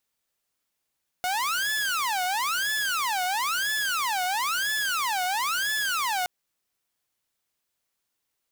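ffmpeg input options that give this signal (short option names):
-f lavfi -i "aevalsrc='0.0794*(2*mod((1227*t-503/(2*PI*1)*sin(2*PI*1*t)),1)-1)':d=5.02:s=44100"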